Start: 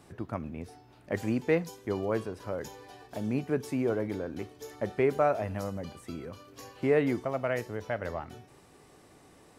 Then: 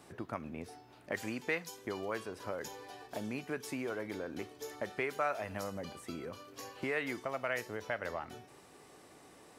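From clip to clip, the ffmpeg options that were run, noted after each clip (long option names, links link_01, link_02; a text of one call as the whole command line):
ffmpeg -i in.wav -filter_complex "[0:a]lowshelf=frequency=160:gain=-11,acrossover=split=1100[link_01][link_02];[link_01]acompressor=threshold=-38dB:ratio=6[link_03];[link_03][link_02]amix=inputs=2:normalize=0,volume=1dB" out.wav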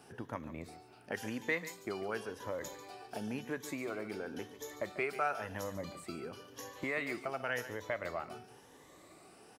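ffmpeg -i in.wav -af "afftfilt=real='re*pow(10,8/40*sin(2*PI*(1.1*log(max(b,1)*sr/1024/100)/log(2)-(0.95)*(pts-256)/sr)))':imag='im*pow(10,8/40*sin(2*PI*(1.1*log(max(b,1)*sr/1024/100)/log(2)-(0.95)*(pts-256)/sr)))':win_size=1024:overlap=0.75,aecho=1:1:143:0.211,volume=-1.5dB" out.wav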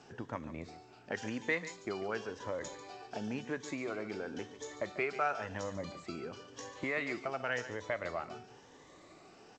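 ffmpeg -i in.wav -af "volume=1dB" -ar 16000 -c:a g722 out.g722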